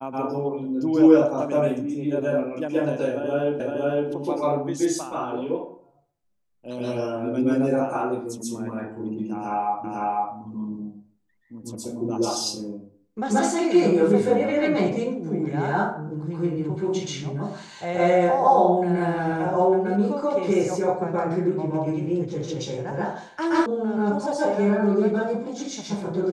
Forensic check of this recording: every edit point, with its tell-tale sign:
0:03.60: the same again, the last 0.51 s
0:09.84: the same again, the last 0.5 s
0:23.66: cut off before it has died away

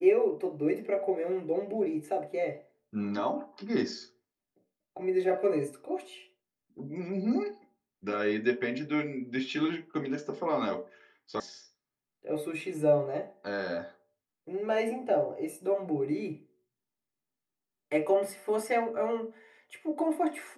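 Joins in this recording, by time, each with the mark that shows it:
0:11.40: cut off before it has died away

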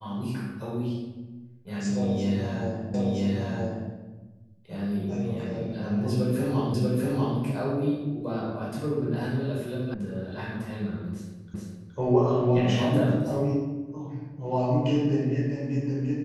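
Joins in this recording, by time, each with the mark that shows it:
0:02.94: the same again, the last 0.97 s
0:06.74: the same again, the last 0.64 s
0:09.94: cut off before it has died away
0:11.54: the same again, the last 0.42 s

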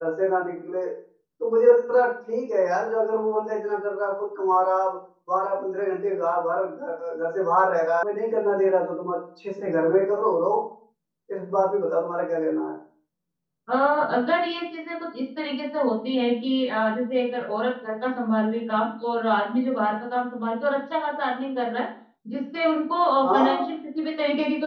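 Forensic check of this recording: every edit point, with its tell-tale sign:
0:08.03: cut off before it has died away

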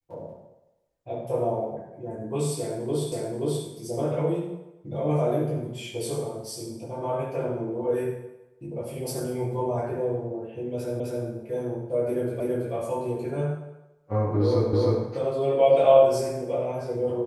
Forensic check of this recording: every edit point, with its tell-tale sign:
0:03.12: the same again, the last 0.53 s
0:11.00: the same again, the last 0.26 s
0:12.40: the same again, the last 0.33 s
0:14.73: the same again, the last 0.31 s

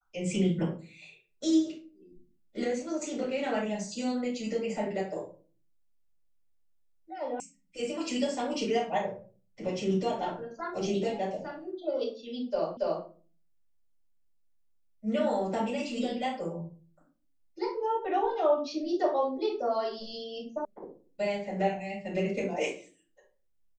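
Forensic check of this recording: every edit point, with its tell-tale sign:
0:07.40: cut off before it has died away
0:12.77: the same again, the last 0.28 s
0:20.65: cut off before it has died away

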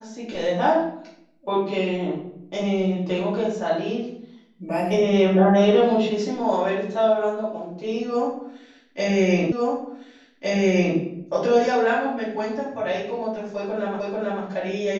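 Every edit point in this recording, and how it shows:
0:09.52: the same again, the last 1.46 s
0:14.00: the same again, the last 0.44 s

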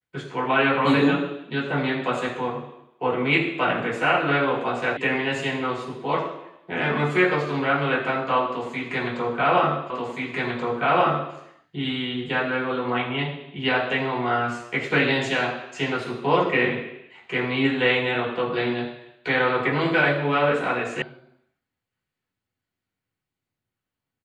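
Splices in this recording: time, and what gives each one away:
0:04.97: cut off before it has died away
0:09.90: the same again, the last 1.43 s
0:21.02: cut off before it has died away

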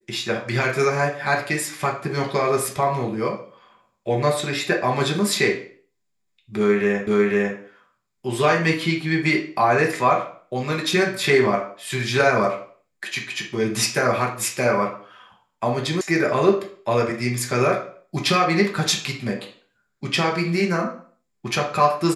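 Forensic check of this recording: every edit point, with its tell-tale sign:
0:07.07: the same again, the last 0.5 s
0:16.01: cut off before it has died away

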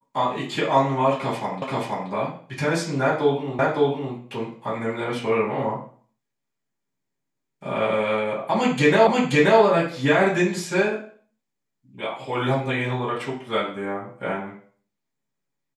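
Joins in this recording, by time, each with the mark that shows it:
0:01.62: the same again, the last 0.48 s
0:03.59: the same again, the last 0.56 s
0:09.07: the same again, the last 0.53 s

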